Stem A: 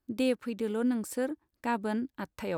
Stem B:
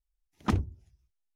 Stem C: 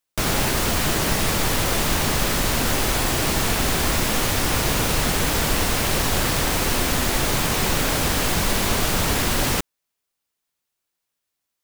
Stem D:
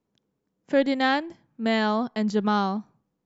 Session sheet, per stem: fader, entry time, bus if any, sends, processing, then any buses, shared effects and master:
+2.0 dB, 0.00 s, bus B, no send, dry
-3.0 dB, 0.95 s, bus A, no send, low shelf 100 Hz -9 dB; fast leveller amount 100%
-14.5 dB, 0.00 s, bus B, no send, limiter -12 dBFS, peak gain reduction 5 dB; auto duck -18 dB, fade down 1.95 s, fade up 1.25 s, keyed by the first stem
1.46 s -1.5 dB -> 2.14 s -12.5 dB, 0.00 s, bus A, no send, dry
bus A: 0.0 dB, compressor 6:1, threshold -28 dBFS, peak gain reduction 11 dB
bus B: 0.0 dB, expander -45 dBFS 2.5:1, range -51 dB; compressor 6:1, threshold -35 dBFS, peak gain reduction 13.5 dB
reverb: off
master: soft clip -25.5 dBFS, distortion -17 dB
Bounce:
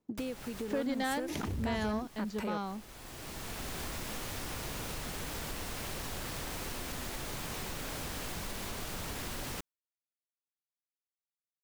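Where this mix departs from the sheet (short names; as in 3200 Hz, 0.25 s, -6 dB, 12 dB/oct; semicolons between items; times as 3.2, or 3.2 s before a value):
stem B -3.0 dB -> -9.5 dB; stem C: missing limiter -12 dBFS, peak gain reduction 5 dB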